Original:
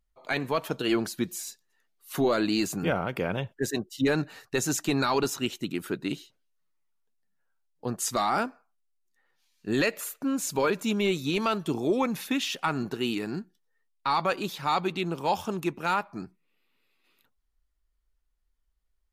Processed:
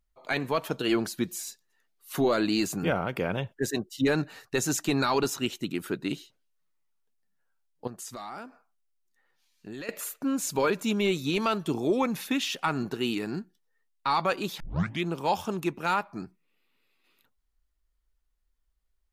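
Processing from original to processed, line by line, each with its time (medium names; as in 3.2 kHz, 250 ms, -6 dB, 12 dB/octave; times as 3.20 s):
7.87–9.89 s: compression 3:1, threshold -41 dBFS
14.60 s: tape start 0.44 s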